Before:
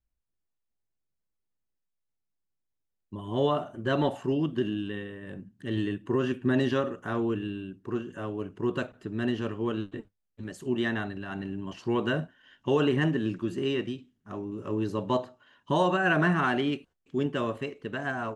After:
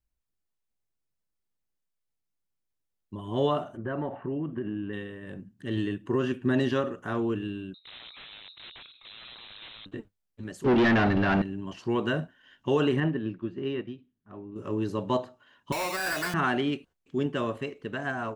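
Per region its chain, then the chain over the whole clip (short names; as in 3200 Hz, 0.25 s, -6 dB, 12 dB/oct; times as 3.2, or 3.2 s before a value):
3.77–4.93 inverse Chebyshev low-pass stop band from 6700 Hz, stop band 60 dB + compressor 4:1, threshold -28 dBFS
7.74–9.86 compressor 10:1, threshold -39 dBFS + wrapped overs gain 40.5 dB + inverted band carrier 4000 Hz
10.64–11.42 sample leveller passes 5 + air absorption 250 m
13–14.56 air absorption 270 m + upward expander, over -38 dBFS
15.72–16.34 sample-rate reducer 3200 Hz + HPF 870 Hz 6 dB/oct + hard clip -25.5 dBFS
whole clip: dry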